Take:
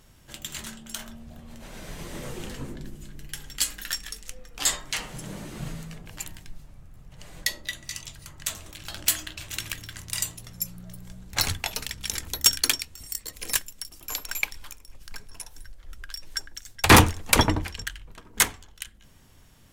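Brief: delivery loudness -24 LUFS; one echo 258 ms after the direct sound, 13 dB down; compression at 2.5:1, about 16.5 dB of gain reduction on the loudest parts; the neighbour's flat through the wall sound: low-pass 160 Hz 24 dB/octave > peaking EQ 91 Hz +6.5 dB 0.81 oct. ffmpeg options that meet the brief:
-af "acompressor=threshold=0.0178:ratio=2.5,lowpass=f=160:w=0.5412,lowpass=f=160:w=1.3066,equalizer=f=91:t=o:w=0.81:g=6.5,aecho=1:1:258:0.224,volume=11.2"

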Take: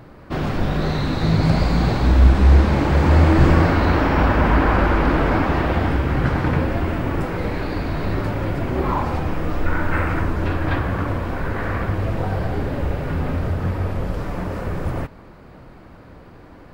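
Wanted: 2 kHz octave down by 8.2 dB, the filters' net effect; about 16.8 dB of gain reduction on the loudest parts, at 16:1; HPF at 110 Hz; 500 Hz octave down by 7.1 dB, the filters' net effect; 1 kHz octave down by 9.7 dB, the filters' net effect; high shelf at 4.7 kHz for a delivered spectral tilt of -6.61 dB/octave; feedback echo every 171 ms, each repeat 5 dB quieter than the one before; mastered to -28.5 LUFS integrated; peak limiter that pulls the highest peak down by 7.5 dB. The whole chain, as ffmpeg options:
-af "highpass=110,equalizer=f=500:t=o:g=-7,equalizer=f=1000:t=o:g=-8.5,equalizer=f=2000:t=o:g=-5.5,highshelf=f=4700:g=-8.5,acompressor=threshold=0.0282:ratio=16,alimiter=level_in=2.11:limit=0.0631:level=0:latency=1,volume=0.473,aecho=1:1:171|342|513|684|855|1026|1197:0.562|0.315|0.176|0.0988|0.0553|0.031|0.0173,volume=2.99"

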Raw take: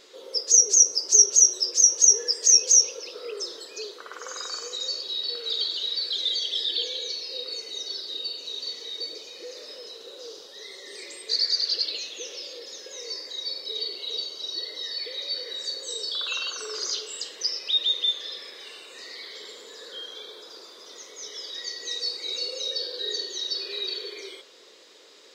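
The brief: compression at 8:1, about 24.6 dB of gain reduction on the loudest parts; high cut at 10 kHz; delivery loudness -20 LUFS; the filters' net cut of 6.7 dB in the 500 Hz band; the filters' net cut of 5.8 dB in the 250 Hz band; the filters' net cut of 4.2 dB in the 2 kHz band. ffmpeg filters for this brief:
-af "lowpass=10000,equalizer=f=250:t=o:g=-5,equalizer=f=500:t=o:g=-6,equalizer=f=2000:t=o:g=-5.5,acompressor=threshold=0.0112:ratio=8,volume=10"

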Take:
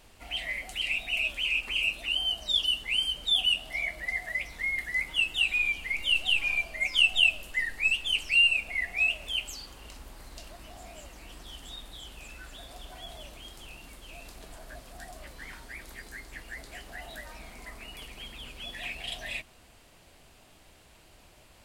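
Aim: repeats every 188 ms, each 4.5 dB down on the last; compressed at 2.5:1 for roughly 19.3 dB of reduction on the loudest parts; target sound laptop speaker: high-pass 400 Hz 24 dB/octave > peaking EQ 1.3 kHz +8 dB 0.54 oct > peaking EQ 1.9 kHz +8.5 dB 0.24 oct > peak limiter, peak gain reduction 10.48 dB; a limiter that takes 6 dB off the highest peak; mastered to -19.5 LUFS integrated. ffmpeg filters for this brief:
-af "acompressor=threshold=0.00398:ratio=2.5,alimiter=level_in=3.76:limit=0.0631:level=0:latency=1,volume=0.266,highpass=f=400:w=0.5412,highpass=f=400:w=1.3066,equalizer=f=1300:t=o:w=0.54:g=8,equalizer=f=1900:t=o:w=0.24:g=8.5,aecho=1:1:188|376|564|752|940|1128|1316|1504|1692:0.596|0.357|0.214|0.129|0.0772|0.0463|0.0278|0.0167|0.01,volume=16.8,alimiter=limit=0.251:level=0:latency=1"

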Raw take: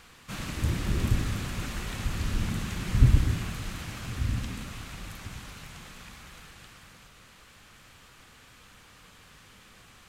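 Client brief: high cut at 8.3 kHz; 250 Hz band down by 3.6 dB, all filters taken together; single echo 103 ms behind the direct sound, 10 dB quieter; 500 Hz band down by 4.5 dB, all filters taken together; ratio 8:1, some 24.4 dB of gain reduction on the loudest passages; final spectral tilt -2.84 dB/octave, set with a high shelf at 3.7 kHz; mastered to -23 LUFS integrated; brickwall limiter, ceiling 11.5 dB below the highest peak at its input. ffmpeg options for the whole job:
-af "lowpass=8300,equalizer=f=250:t=o:g=-4.5,equalizer=f=500:t=o:g=-4.5,highshelf=f=3700:g=5.5,acompressor=threshold=0.01:ratio=8,alimiter=level_in=7.08:limit=0.0631:level=0:latency=1,volume=0.141,aecho=1:1:103:0.316,volume=22.4"

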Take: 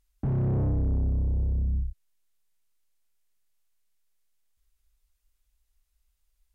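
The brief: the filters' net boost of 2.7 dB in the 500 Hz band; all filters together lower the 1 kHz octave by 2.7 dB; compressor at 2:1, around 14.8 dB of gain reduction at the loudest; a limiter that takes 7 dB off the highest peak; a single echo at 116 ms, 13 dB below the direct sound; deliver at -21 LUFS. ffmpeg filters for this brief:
-af "equalizer=f=500:t=o:g=5,equalizer=f=1000:t=o:g=-6.5,acompressor=threshold=0.00224:ratio=2,alimiter=level_in=6.31:limit=0.0631:level=0:latency=1,volume=0.158,aecho=1:1:116:0.224,volume=17.8"

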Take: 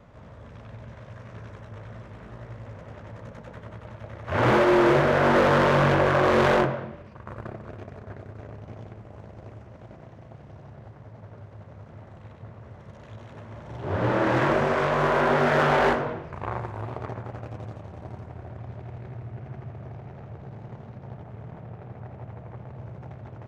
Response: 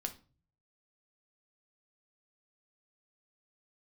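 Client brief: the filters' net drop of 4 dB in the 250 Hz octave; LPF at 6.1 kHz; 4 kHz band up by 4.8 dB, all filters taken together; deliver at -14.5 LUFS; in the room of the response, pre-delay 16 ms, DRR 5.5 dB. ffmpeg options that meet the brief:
-filter_complex "[0:a]lowpass=6100,equalizer=f=250:t=o:g=-6.5,equalizer=f=4000:t=o:g=7,asplit=2[s0][s1];[1:a]atrim=start_sample=2205,adelay=16[s2];[s1][s2]afir=irnorm=-1:irlink=0,volume=0.562[s3];[s0][s3]amix=inputs=2:normalize=0,volume=2.37"

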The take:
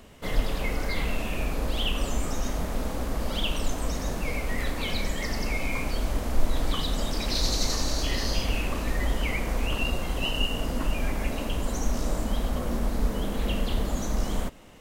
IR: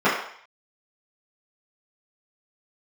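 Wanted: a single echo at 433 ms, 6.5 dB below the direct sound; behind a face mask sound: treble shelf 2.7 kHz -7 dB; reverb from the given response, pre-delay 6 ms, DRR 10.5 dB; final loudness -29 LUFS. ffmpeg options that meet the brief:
-filter_complex "[0:a]aecho=1:1:433:0.473,asplit=2[s0][s1];[1:a]atrim=start_sample=2205,adelay=6[s2];[s1][s2]afir=irnorm=-1:irlink=0,volume=0.0266[s3];[s0][s3]amix=inputs=2:normalize=0,highshelf=f=2700:g=-7,volume=1.12"

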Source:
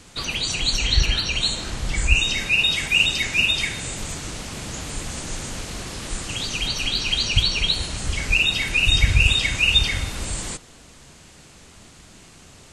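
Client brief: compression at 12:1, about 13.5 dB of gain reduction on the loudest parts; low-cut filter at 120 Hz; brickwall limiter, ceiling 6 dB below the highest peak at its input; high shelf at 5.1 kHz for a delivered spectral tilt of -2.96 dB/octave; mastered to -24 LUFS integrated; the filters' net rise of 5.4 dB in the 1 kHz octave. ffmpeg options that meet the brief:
-af "highpass=120,equalizer=f=1000:t=o:g=6.5,highshelf=f=5100:g=7.5,acompressor=threshold=0.0562:ratio=12,volume=1.78,alimiter=limit=0.15:level=0:latency=1"

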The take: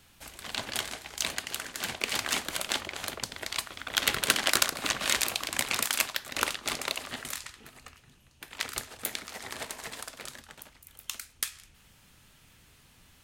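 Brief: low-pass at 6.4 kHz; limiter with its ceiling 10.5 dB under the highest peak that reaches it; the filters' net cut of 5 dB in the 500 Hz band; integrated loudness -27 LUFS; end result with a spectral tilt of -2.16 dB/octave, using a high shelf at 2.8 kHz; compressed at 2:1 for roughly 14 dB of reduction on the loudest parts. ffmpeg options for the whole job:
-af "lowpass=6400,equalizer=f=500:t=o:g=-7,highshelf=f=2800:g=6.5,acompressor=threshold=0.00631:ratio=2,volume=6.31,alimiter=limit=0.335:level=0:latency=1"

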